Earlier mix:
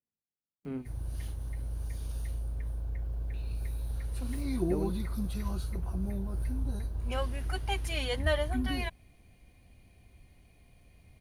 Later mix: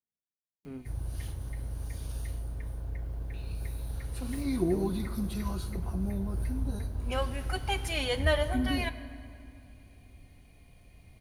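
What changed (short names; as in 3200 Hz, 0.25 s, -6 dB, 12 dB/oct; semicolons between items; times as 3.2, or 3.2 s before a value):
speech -5.0 dB; reverb: on, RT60 2.5 s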